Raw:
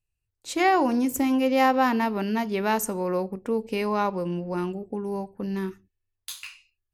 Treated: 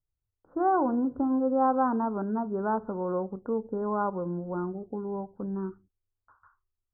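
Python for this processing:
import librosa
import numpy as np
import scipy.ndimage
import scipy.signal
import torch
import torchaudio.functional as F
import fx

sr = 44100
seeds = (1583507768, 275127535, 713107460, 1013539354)

y = scipy.signal.sosfilt(scipy.signal.butter(16, 1500.0, 'lowpass', fs=sr, output='sos'), x)
y = y * 10.0 ** (-3.5 / 20.0)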